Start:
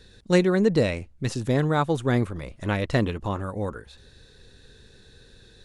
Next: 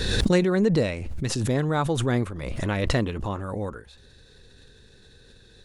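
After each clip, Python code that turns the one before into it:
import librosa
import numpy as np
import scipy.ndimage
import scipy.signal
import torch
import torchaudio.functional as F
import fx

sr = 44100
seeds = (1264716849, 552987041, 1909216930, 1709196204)

y = fx.pre_swell(x, sr, db_per_s=29.0)
y = F.gain(torch.from_numpy(y), -2.0).numpy()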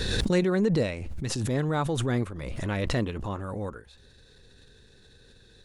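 y = fx.transient(x, sr, attack_db=-7, sustain_db=-2)
y = F.gain(torch.from_numpy(y), -2.0).numpy()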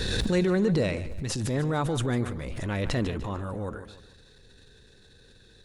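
y = fx.echo_feedback(x, sr, ms=148, feedback_pct=43, wet_db=-14.5)
y = fx.transient(y, sr, attack_db=-4, sustain_db=4)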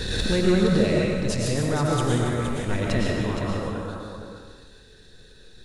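y = x + 10.0 ** (-7.5 / 20.0) * np.pad(x, (int(468 * sr / 1000.0), 0))[:len(x)]
y = fx.rev_freeverb(y, sr, rt60_s=1.1, hf_ratio=1.0, predelay_ms=75, drr_db=-2.0)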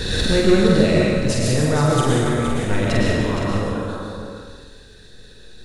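y = fx.doubler(x, sr, ms=47.0, db=-3.5)
y = F.gain(torch.from_numpy(y), 4.0).numpy()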